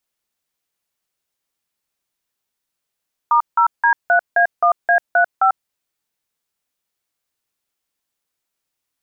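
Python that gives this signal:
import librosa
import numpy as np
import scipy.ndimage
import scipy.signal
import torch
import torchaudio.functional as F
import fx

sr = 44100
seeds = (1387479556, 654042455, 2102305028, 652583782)

y = fx.dtmf(sr, digits='*0D3A1A35', tone_ms=94, gap_ms=169, level_db=-13.0)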